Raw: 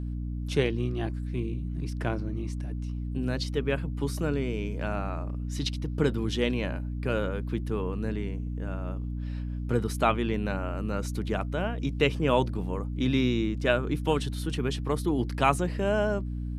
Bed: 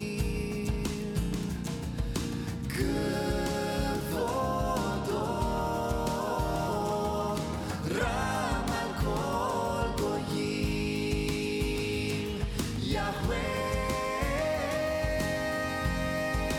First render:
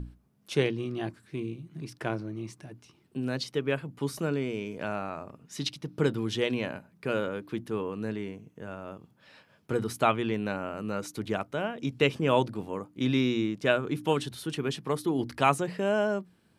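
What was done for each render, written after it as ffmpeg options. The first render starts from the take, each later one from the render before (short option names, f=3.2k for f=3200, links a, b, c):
-af "bandreject=f=60:t=h:w=6,bandreject=f=120:t=h:w=6,bandreject=f=180:t=h:w=6,bandreject=f=240:t=h:w=6,bandreject=f=300:t=h:w=6"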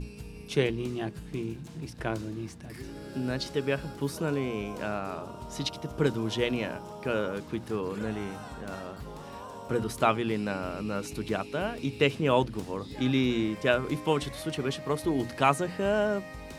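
-filter_complex "[1:a]volume=-12.5dB[a];[0:a][a]amix=inputs=2:normalize=0"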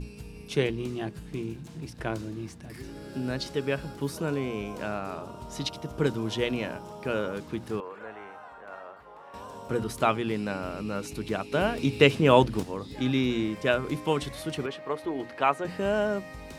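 -filter_complex "[0:a]asettb=1/sr,asplit=3[a][b][c];[a]atrim=end=7.804[d];[b]atrim=start=7.8:end=9.34,asetpts=PTS-STARTPTS,afade=t=in:d=0.004:c=qsin,afade=t=out:st=1.536:d=0.004:c=qsin,acrossover=split=500 2300:gain=0.0794 1 0.1[e][f][g];[e][f][g]amix=inputs=3:normalize=0[h];[c]atrim=start=9.336[i];[d][h]acrossfade=d=0.004:c1=hsin:c2=qsin[j];[j][i]acrossfade=d=0.004:c1=qsin:c2=hsin,asettb=1/sr,asplit=3[k][l][m];[k]atrim=end=14.664[n];[l]atrim=start=14.66:end=15.65,asetpts=PTS-STARTPTS,afade=t=in:d=0.004:c=qsin,afade=t=out:st=0.986:d=0.004:c=qsin,bass=f=250:g=-14,treble=f=4k:g=-14[o];[m]atrim=start=15.646[p];[n][o]acrossfade=d=0.004:c1=hsin:c2=qsin[q];[q][p]acrossfade=d=0.004:c1=qsin:c2=hsin,asplit=3[r][s][t];[r]atrim=end=11.522[u];[s]atrim=start=11.518:end=12.632,asetpts=PTS-STARTPTS,volume=5.5dB[v];[t]atrim=start=12.628[w];[u][v]acrossfade=d=0.004:c1=hsin:c2=hsin[x];[x][w]acrossfade=d=0.004:c1=hsin:c2=hsin"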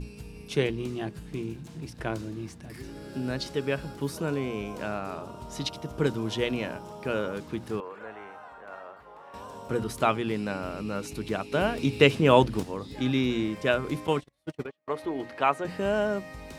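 -filter_complex "[0:a]asettb=1/sr,asplit=3[a][b][c];[a]atrim=end=14.074[d];[b]atrim=start=14.07:end=14.88,asetpts=PTS-STARTPTS,afade=t=in:d=0.004:c=qsin,afade=t=out:st=0.806:d=0.004:c=qsin,agate=range=-38dB:threshold=-31dB:ratio=16:release=100:detection=peak[e];[c]atrim=start=14.876[f];[d][e]acrossfade=d=0.004:c1=hsin:c2=qsin[g];[g][f]acrossfade=d=0.004:c1=qsin:c2=hsin"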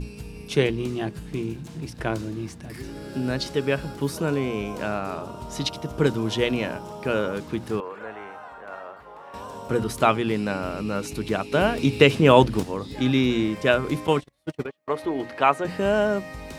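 -af "volume=5dB,alimiter=limit=-1dB:level=0:latency=1"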